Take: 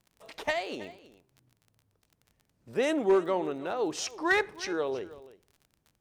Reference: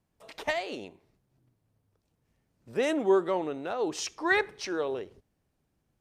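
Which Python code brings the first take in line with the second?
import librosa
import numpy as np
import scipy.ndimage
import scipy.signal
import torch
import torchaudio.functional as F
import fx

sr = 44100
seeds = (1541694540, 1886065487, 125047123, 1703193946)

y = fx.fix_declip(x, sr, threshold_db=-16.5)
y = fx.fix_declick_ar(y, sr, threshold=6.5)
y = fx.fix_echo_inverse(y, sr, delay_ms=322, level_db=-18.0)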